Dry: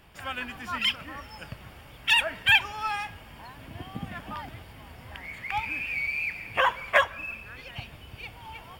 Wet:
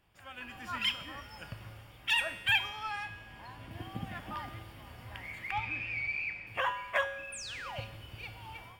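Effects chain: 2.69–3.71 s: treble shelf 9.8 kHz -8.5 dB; level rider gain up to 11.5 dB; 5.51–6.47 s: distance through air 94 m; 7.32–7.81 s: painted sound fall 480–10000 Hz -28 dBFS; feedback comb 110 Hz, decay 1 s, harmonics odd, mix 80%; trim -2.5 dB

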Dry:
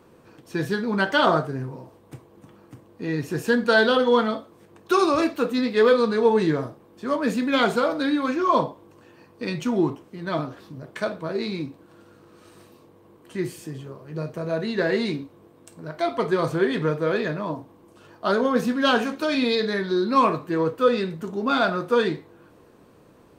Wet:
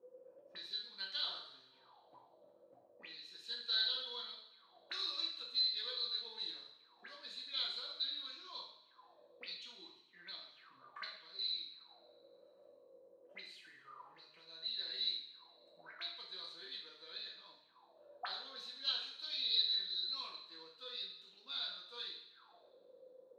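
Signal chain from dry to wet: auto-wah 450–4000 Hz, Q 21, up, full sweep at -26.5 dBFS; two-slope reverb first 0.63 s, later 1.9 s, from -18 dB, DRR -1 dB; trim +2 dB

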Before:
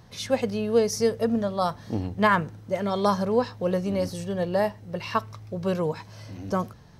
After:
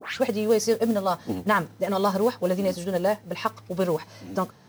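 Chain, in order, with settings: tape start-up on the opening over 0.33 s; high-pass 180 Hz 12 dB/octave; in parallel at +2.5 dB: peak limiter -16.5 dBFS, peak gain reduction 9 dB; on the sum: time stretch by phase-locked vocoder 0.67×; modulation noise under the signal 23 dB; trim -4.5 dB

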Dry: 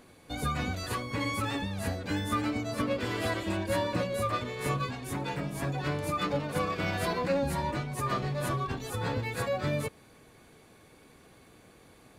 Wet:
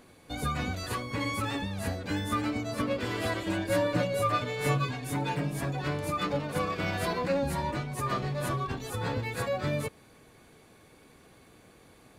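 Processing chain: 3.46–5.61 s: comb 6.8 ms, depth 73%

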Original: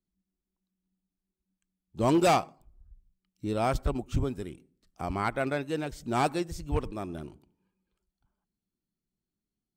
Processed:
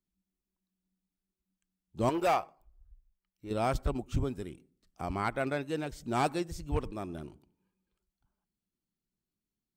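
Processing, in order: 2.09–3.51 s: graphic EQ 125/250/4000/8000 Hz -11/-10/-6/-9 dB; trim -2.5 dB

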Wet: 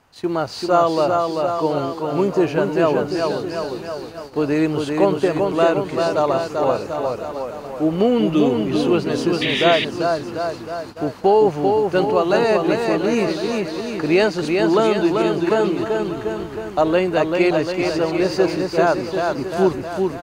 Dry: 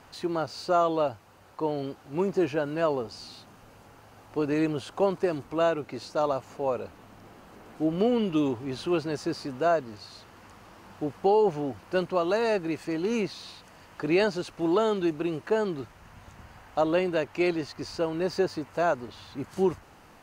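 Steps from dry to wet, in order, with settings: bouncing-ball echo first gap 390 ms, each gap 0.9×, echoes 5; gate -41 dBFS, range -13 dB; painted sound noise, 9.41–9.85 s, 1.7–3.9 kHz -30 dBFS; trim +7.5 dB

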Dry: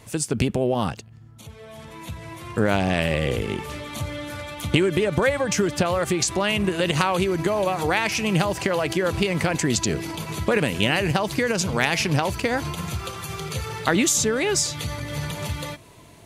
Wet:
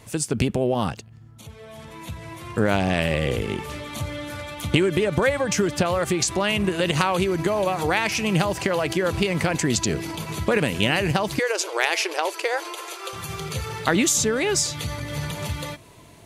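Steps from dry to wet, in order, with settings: 11.39–13.13 s: brick-wall FIR band-pass 320–13000 Hz

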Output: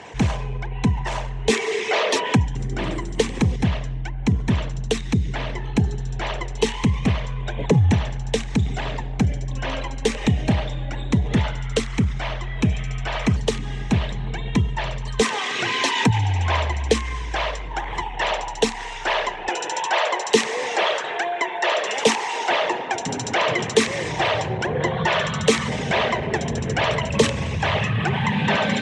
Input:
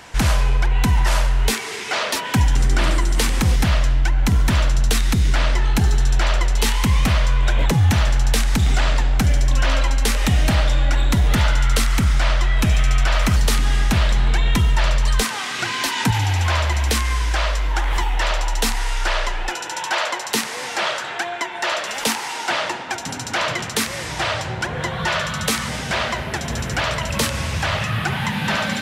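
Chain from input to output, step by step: resonances exaggerated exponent 1.5; cabinet simulation 110–8000 Hz, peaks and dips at 430 Hz +9 dB, 1.4 kHz -10 dB, 4.7 kHz -6 dB; trim +2.5 dB

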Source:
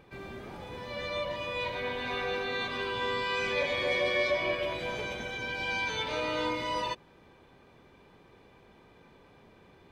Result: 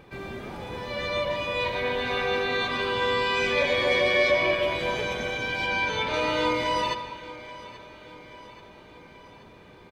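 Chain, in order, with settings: 5.66–6.14 s: treble shelf 3.9 kHz -7 dB; feedback delay 831 ms, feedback 57%, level -18 dB; reverberation RT60 1.5 s, pre-delay 112 ms, DRR 11.5 dB; trim +6 dB

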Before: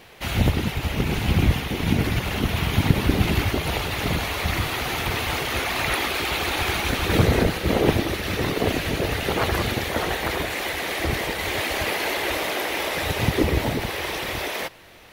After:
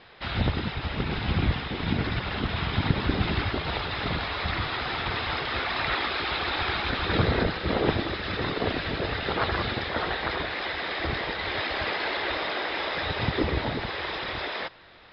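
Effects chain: rippled Chebyshev low-pass 5.2 kHz, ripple 6 dB

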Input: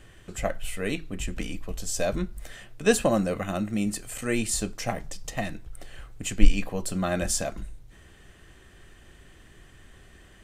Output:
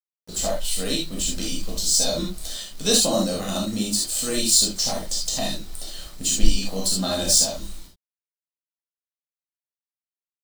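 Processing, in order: median filter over 3 samples; gate -44 dBFS, range -46 dB; resonant high shelf 3 kHz +11.5 dB, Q 3; in parallel at +2.5 dB: compression 5:1, threshold -28 dBFS, peak gain reduction 19 dB; on the sum: harmony voices +5 st -17 dB; bit crusher 7-bit; gated-style reverb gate 100 ms flat, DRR -4 dB; trim -8 dB

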